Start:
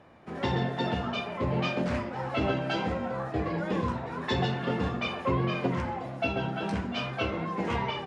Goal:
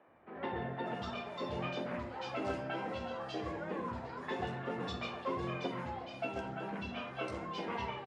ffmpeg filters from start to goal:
-filter_complex "[0:a]lowshelf=f=150:g=-7,acrossover=split=190|2900[a][b][c];[a]adelay=80[d];[c]adelay=590[e];[d][b][e]amix=inputs=3:normalize=0,volume=-7dB"

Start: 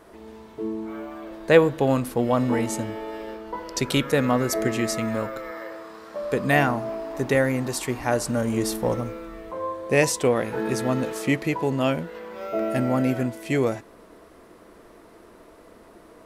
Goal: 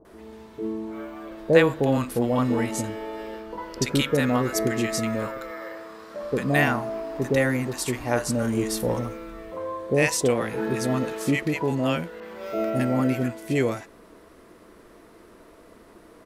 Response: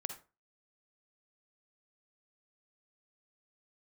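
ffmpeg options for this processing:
-filter_complex "[0:a]acrossover=split=730[a][b];[b]adelay=50[c];[a][c]amix=inputs=2:normalize=0,asettb=1/sr,asplit=3[d][e][f];[d]atrim=end=12.204[g];[e]atrim=start=12.2:end=12.7,asetpts=PTS-STARTPTS,afade=t=in:d=0.004:c=qsin,afade=t=out:st=0.496:d=0.004:c=qsin,adynamicequalizer=threshold=0.00501:dfrequency=2500:dqfactor=0.7:tfrequency=2500:tqfactor=0.7:attack=5:release=100:ratio=0.375:range=2:mode=boostabove:tftype=highshelf[h];[f]atrim=start=12.696[i];[g][h]acrossfade=d=0.004:c1=hsin:c2=qsin[j];[j][i]acrossfade=d=0.004:c1=qsin:c2=hsin"

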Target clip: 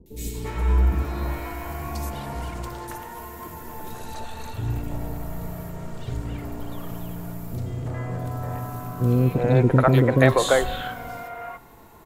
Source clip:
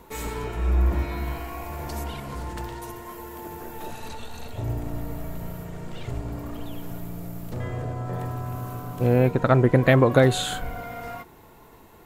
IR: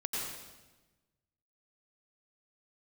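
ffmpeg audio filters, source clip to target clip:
-filter_complex "[0:a]acrossover=split=410|2900[a][b][c];[c]adelay=60[d];[b]adelay=340[e];[a][e][d]amix=inputs=3:normalize=0,asplit=2[f][g];[1:a]atrim=start_sample=2205[h];[g][h]afir=irnorm=-1:irlink=0,volume=-22.5dB[i];[f][i]amix=inputs=2:normalize=0,volume=1.5dB"

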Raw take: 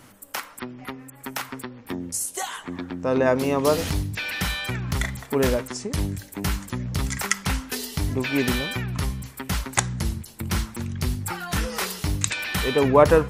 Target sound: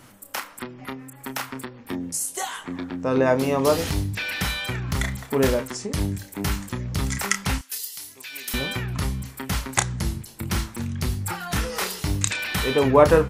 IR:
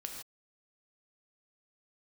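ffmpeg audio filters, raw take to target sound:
-filter_complex "[0:a]asettb=1/sr,asplit=3[a][b][c];[a]atrim=end=7.584[d];[b]atrim=start=7.58:end=8.54,asetpts=PTS-STARTPTS,afade=t=in:d=0.004:c=qsin,afade=t=out:st=0.956:d=0.004:c=qsin,aderivative[e];[c]atrim=start=8.536[f];[d][e]acrossfade=d=0.004:c1=hsin:c2=qsin[g];[g][f]acrossfade=d=0.004:c1=qsin:c2=hsin,asplit=2[h][i];[i]adelay=30,volume=-8.5dB[j];[h][j]amix=inputs=2:normalize=0"

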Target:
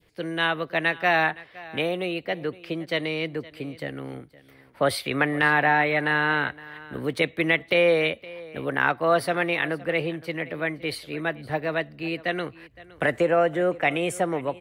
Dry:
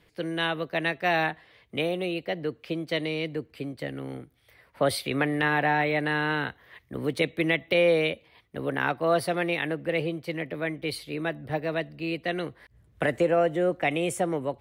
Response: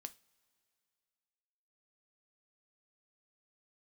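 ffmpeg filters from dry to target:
-filter_complex "[0:a]adynamicequalizer=threshold=0.0112:dfrequency=1400:dqfactor=0.72:tfrequency=1400:tqfactor=0.72:attack=5:release=100:ratio=0.375:range=3:mode=boostabove:tftype=bell,asplit=2[a][b];[b]aecho=0:1:515:0.1[c];[a][c]amix=inputs=2:normalize=0"

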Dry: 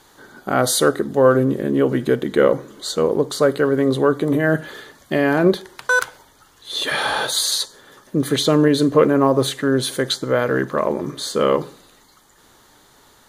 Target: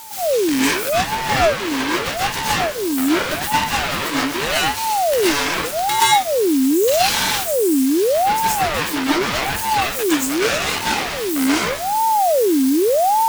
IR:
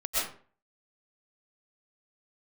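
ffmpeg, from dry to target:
-filter_complex "[0:a]aeval=exprs='val(0)+0.5*0.126*sgn(val(0))':c=same,tiltshelf=f=860:g=-5.5,acompressor=threshold=-16dB:ratio=6,bass=f=250:g=-11,treble=f=4k:g=-15,aeval=exprs='abs(val(0))':c=same,aeval=exprs='0.422*(cos(1*acos(clip(val(0)/0.422,-1,1)))-cos(1*PI/2))+0.0668*(cos(4*acos(clip(val(0)/0.422,-1,1)))-cos(4*PI/2))+0.0596*(cos(6*acos(clip(val(0)/0.422,-1,1)))-cos(6*PI/2))+0.133*(cos(7*acos(clip(val(0)/0.422,-1,1)))-cos(7*PI/2))':c=same,crystalizer=i=2.5:c=0[a];[1:a]atrim=start_sample=2205[b];[a][b]afir=irnorm=-1:irlink=0,aeval=exprs='val(0)*sin(2*PI*580*n/s+580*0.55/0.83*sin(2*PI*0.83*n/s))':c=same,volume=-5.5dB"

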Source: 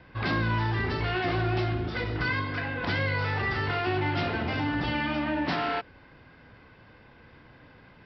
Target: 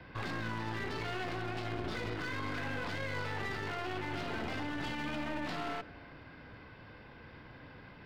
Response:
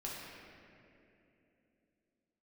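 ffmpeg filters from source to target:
-filter_complex "[0:a]acrossover=split=160|700[a][b][c];[a]acompressor=threshold=-41dB:ratio=4[d];[b]acompressor=threshold=-32dB:ratio=4[e];[c]acompressor=threshold=-33dB:ratio=4[f];[d][e][f]amix=inputs=3:normalize=0,alimiter=level_in=5dB:limit=-24dB:level=0:latency=1:release=13,volume=-5dB,aeval=exprs='clip(val(0),-1,0.0075)':c=same,asplit=2[g][h];[1:a]atrim=start_sample=2205[i];[h][i]afir=irnorm=-1:irlink=0,volume=-15dB[j];[g][j]amix=inputs=2:normalize=0"

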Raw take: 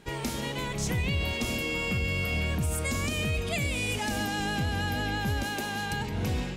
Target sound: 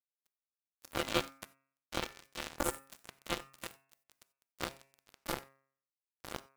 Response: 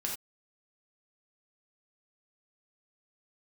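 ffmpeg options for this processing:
-filter_complex "[0:a]aeval=exprs='val(0)*sin(2*PI*430*n/s)':c=same,agate=range=-33dB:threshold=-23dB:ratio=3:detection=peak,equalizer=f=1.6k:t=o:w=1.2:g=-8,acrusher=bits=4:mix=0:aa=0.5,bandreject=f=135.6:t=h:w=4,bandreject=f=271.2:t=h:w=4,bandreject=f=406.8:t=h:w=4,bandreject=f=542.4:t=h:w=4,bandreject=f=678:t=h:w=4,bandreject=f=813.6:t=h:w=4,bandreject=f=949.2:t=h:w=4,bandreject=f=1.0848k:t=h:w=4,bandreject=f=1.2204k:t=h:w=4,bandreject=f=1.356k:t=h:w=4,bandreject=f=1.4916k:t=h:w=4,bandreject=f=1.6272k:t=h:w=4,bandreject=f=1.7628k:t=h:w=4,bandreject=f=1.8984k:t=h:w=4,bandreject=f=2.034k:t=h:w=4,bandreject=f=2.1696k:t=h:w=4,bandreject=f=2.3052k:t=h:w=4,bandreject=f=2.4408k:t=h:w=4,bandreject=f=2.5764k:t=h:w=4,bandreject=f=2.712k:t=h:w=4,acrusher=bits=4:mode=log:mix=0:aa=0.000001,asplit=2[a][b];[1:a]atrim=start_sample=2205,highshelf=f=7.6k:g=10[c];[b][c]afir=irnorm=-1:irlink=0,volume=-19.5dB[d];[a][d]amix=inputs=2:normalize=0,volume=12dB"

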